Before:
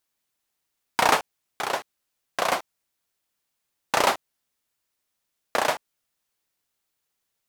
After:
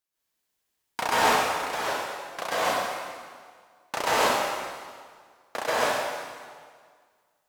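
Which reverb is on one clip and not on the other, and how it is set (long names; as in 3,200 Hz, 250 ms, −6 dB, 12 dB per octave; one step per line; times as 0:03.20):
dense smooth reverb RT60 1.8 s, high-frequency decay 0.9×, pre-delay 115 ms, DRR −9.5 dB
level −9 dB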